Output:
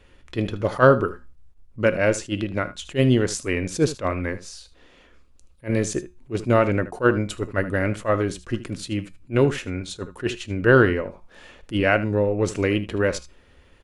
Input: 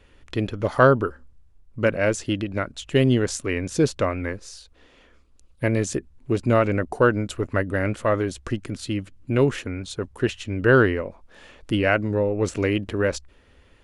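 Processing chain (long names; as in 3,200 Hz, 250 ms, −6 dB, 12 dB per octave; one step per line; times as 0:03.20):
tuned comb filter 180 Hz, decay 0.29 s, harmonics all, mix 50%
single-tap delay 77 ms −15.5 dB
level that may rise only so fast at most 330 dB per second
level +6 dB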